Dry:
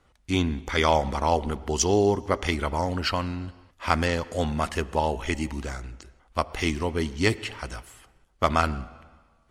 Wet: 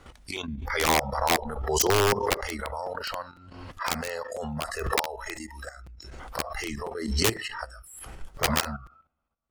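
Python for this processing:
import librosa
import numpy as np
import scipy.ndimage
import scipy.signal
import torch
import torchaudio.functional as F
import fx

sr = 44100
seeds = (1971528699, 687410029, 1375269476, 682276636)

y = fx.transient(x, sr, attack_db=-6, sustain_db=-2, at=(0.65, 1.3))
y = fx.low_shelf(y, sr, hz=89.0, db=4.5, at=(7.77, 8.43))
y = fx.noise_reduce_blind(y, sr, reduce_db=22)
y = (np.mod(10.0 ** (15.0 / 20.0) * y + 1.0, 2.0) - 1.0) / 10.0 ** (15.0 / 20.0)
y = fx.level_steps(y, sr, step_db=12)
y = fx.low_shelf(y, sr, hz=450.0, db=-7.5, at=(4.89, 5.77))
y = fx.buffer_crackle(y, sr, first_s=0.36, period_s=0.5, block=256, kind='repeat')
y = fx.pre_swell(y, sr, db_per_s=49.0)
y = y * 10.0 ** (3.0 / 20.0)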